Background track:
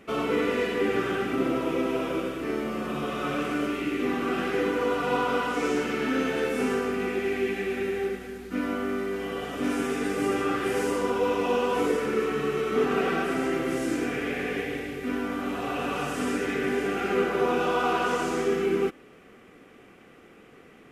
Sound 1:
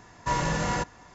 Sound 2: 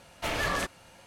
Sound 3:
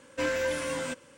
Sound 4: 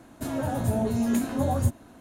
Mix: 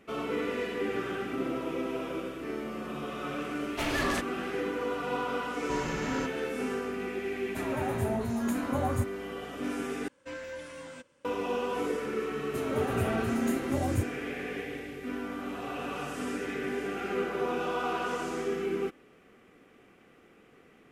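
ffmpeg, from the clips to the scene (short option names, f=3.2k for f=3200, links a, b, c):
-filter_complex "[4:a]asplit=2[a][b];[0:a]volume=-6.5dB[c];[a]equalizer=f=1.2k:w=1.3:g=9[d];[3:a]highshelf=f=8.7k:g=-8[e];[c]asplit=2[f][g];[f]atrim=end=10.084[h];[e]atrim=end=1.17,asetpts=PTS-STARTPTS,volume=-11.5dB[i];[g]atrim=start=11.246[j];[2:a]atrim=end=1.06,asetpts=PTS-STARTPTS,volume=-1.5dB,afade=t=in:d=0.004:c=hsin,afade=t=out:st=1.056:d=0.004:c=hsin,adelay=3550[k];[1:a]atrim=end=1.14,asetpts=PTS-STARTPTS,volume=-9.5dB,afade=t=in:d=0.004:c=hsin,afade=t=out:st=1.136:d=0.004:c=hsin,adelay=5430[l];[d]atrim=end=2,asetpts=PTS-STARTPTS,volume=-6.5dB,afade=t=in:d=0.004:c=hsin,afade=t=out:st=1.996:d=0.004:c=hsin,adelay=7340[m];[b]atrim=end=2,asetpts=PTS-STARTPTS,volume=-6dB,afade=t=in:d=0.004:c=hsin,afade=t=out:st=1.996:d=0.004:c=hsin,adelay=12330[n];[h][i]acrossfade=d=0.004:c1=hsin:c2=hsin[o];[o][j]acrossfade=d=0.004:c1=hsin:c2=hsin[p];[p][k][l][m][n]amix=inputs=5:normalize=0"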